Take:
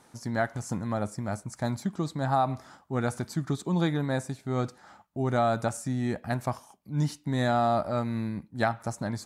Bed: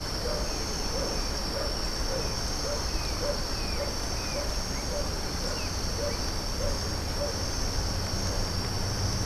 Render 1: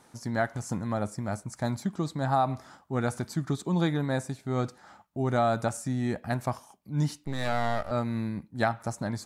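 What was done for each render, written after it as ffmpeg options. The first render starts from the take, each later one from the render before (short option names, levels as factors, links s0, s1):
-filter_complex "[0:a]asettb=1/sr,asplit=3[s0][s1][s2];[s0]atrim=end=7.244[s3];[s1]atrim=start=7.24:end=7.91,asetpts=PTS-STARTPTS,afade=t=in:d=0.004:c=qsin,afade=t=out:st=0.666:d=0.004:c=qsin,aeval=exprs='max(val(0),0)':c=same[s4];[s2]atrim=start=7.906[s5];[s3][s4]acrossfade=d=0.004:c1=hsin:c2=qsin[s6];[s6][s5]acrossfade=d=0.004:c1=qsin:c2=hsin"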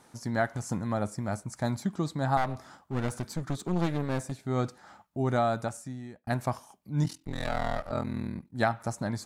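-filter_complex "[0:a]asettb=1/sr,asplit=3[s0][s1][s2];[s0]atrim=end=2.374[s3];[s1]atrim=start=2.37:end=4.32,asetpts=PTS-STARTPTS,afade=t=in:d=0.004:c=qsin,afade=t=out:st=1.946:d=0.004:c=qsin,aeval=exprs='clip(val(0),-1,0.0168)':c=same[s4];[s2]atrim=start=4.316[s5];[s3][s4]acrossfade=d=0.004:c1=hsin:c2=qsin[s6];[s6][s5]acrossfade=d=0.004:c1=qsin:c2=hsin,asettb=1/sr,asplit=3[s7][s8][s9];[s7]atrim=end=7.044[s10];[s8]atrim=start=7.04:end=8.54,asetpts=PTS-STARTPTS,afade=t=in:d=0.004:c=qsin,afade=t=out:st=1.496:d=0.004:c=qsin,aeval=exprs='val(0)*sin(2*PI*21*n/s)':c=same[s11];[s9]atrim=start=8.536[s12];[s10][s11]acrossfade=d=0.004:c1=hsin:c2=qsin[s13];[s13][s12]acrossfade=d=0.004:c1=qsin:c2=hsin,asplit=2[s14][s15];[s14]atrim=end=6.27,asetpts=PTS-STARTPTS,afade=t=out:st=5.28:d=0.99[s16];[s15]atrim=start=6.27,asetpts=PTS-STARTPTS,afade=t=in:d=0.004:c=hsin[s17];[s16][s17]concat=n=2:v=0:a=1"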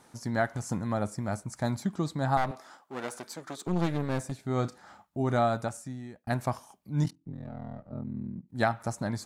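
-filter_complex "[0:a]asettb=1/sr,asplit=3[s0][s1][s2];[s0]atrim=end=2.514[s3];[s1]atrim=start=2.51:end=3.67,asetpts=PTS-STARTPTS,afade=t=in:d=0.004:c=qsin,afade=t=out:st=1.156:d=0.004:c=qsin,highpass=380[s4];[s2]atrim=start=3.666[s5];[s3][s4]acrossfade=d=0.004:c1=hsin:c2=qsin[s6];[s6][s5]acrossfade=d=0.004:c1=qsin:c2=hsin,asettb=1/sr,asplit=3[s7][s8][s9];[s7]atrim=end=4.464[s10];[s8]atrim=start=4.46:end=5.57,asetpts=PTS-STARTPTS,afade=t=in:d=0.004:c=qsin,afade=t=out:st=1.106:d=0.004:c=qsin,asplit=2[s11][s12];[s12]adelay=34,volume=0.211[s13];[s11][s13]amix=inputs=2:normalize=0,atrim=end_sample=48951[s14];[s9]atrim=start=5.566[s15];[s10][s14]acrossfade=d=0.004:c1=hsin:c2=qsin[s16];[s16][s15]acrossfade=d=0.004:c1=qsin:c2=hsin,asplit=3[s17][s18][s19];[s17]afade=t=out:st=7.09:d=0.02[s20];[s18]bandpass=f=170:t=q:w=1.4,afade=t=in:st=7.09:d=0.02,afade=t=out:st=8.48:d=0.02[s21];[s19]afade=t=in:st=8.48:d=0.02[s22];[s20][s21][s22]amix=inputs=3:normalize=0"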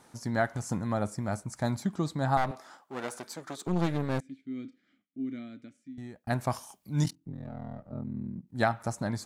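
-filter_complex "[0:a]asettb=1/sr,asplit=3[s0][s1][s2];[s0]atrim=end=4.204[s3];[s1]atrim=start=4.2:end=5.98,asetpts=PTS-STARTPTS,afade=t=in:d=0.004:c=qsin,afade=t=out:st=1.776:d=0.004:c=qsin,asplit=3[s4][s5][s6];[s4]bandpass=f=270:t=q:w=8,volume=1[s7];[s5]bandpass=f=2290:t=q:w=8,volume=0.501[s8];[s6]bandpass=f=3010:t=q:w=8,volume=0.355[s9];[s7][s8][s9]amix=inputs=3:normalize=0[s10];[s2]atrim=start=5.976[s11];[s3][s10]acrossfade=d=0.004:c1=hsin:c2=qsin[s12];[s12][s11]acrossfade=d=0.004:c1=qsin:c2=hsin,asettb=1/sr,asplit=3[s13][s14][s15];[s13]atrim=end=6.504[s16];[s14]atrim=start=6.5:end=7.15,asetpts=PTS-STARTPTS,afade=t=in:d=0.004:c=qsin,afade=t=out:st=0.646:d=0.004:c=qsin,highshelf=f=2600:g=9.5[s17];[s15]atrim=start=7.146[s18];[s16][s17]acrossfade=d=0.004:c1=hsin:c2=qsin[s19];[s19][s18]acrossfade=d=0.004:c1=qsin:c2=hsin"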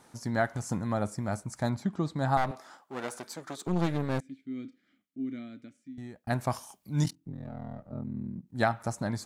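-filter_complex "[0:a]asettb=1/sr,asplit=3[s0][s1][s2];[s0]atrim=end=1.694[s3];[s1]atrim=start=1.69:end=2.16,asetpts=PTS-STARTPTS,afade=t=in:d=0.004:c=qsin,afade=t=out:st=0.466:d=0.004:c=qsin,lowpass=f=3200:p=1[s4];[s2]atrim=start=2.156[s5];[s3][s4]acrossfade=d=0.004:c1=hsin:c2=qsin[s6];[s6][s5]acrossfade=d=0.004:c1=qsin:c2=hsin"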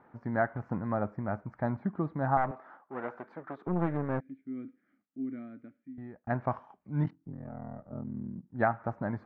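-af "lowpass=f=1800:w=0.5412,lowpass=f=1800:w=1.3066,lowshelf=f=170:g=-4.5"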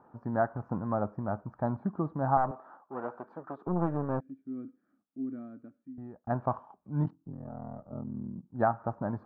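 -af "highshelf=f=1500:t=q:w=1.5:g=-8,bandreject=f=2100:w=5"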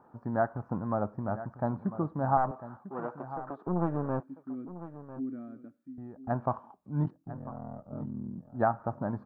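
-af "aecho=1:1:998:0.2"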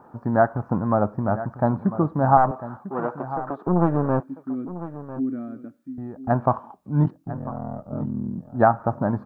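-af "volume=3.16"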